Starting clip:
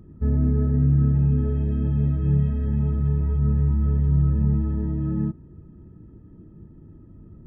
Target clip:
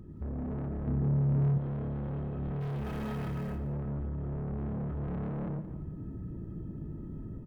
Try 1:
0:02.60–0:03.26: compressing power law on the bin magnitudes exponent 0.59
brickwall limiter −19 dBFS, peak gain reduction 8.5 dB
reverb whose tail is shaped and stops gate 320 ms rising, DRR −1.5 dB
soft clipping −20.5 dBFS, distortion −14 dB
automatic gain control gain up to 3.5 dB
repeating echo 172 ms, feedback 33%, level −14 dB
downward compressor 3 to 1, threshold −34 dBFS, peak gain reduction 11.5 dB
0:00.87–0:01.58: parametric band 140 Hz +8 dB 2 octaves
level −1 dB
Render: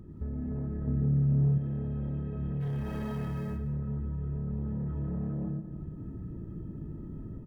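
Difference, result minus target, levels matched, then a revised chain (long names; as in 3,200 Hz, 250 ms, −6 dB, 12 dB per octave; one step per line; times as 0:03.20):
soft clipping: distortion −8 dB
0:02.60–0:03.26: compressing power law on the bin magnitudes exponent 0.59
brickwall limiter −19 dBFS, peak gain reduction 8.5 dB
reverb whose tail is shaped and stops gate 320 ms rising, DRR −1.5 dB
soft clipping −30.5 dBFS, distortion −6 dB
automatic gain control gain up to 3.5 dB
repeating echo 172 ms, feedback 33%, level −14 dB
downward compressor 3 to 1, threshold −34 dBFS, peak gain reduction 6 dB
0:00.87–0:01.58: parametric band 140 Hz +8 dB 2 octaves
level −1 dB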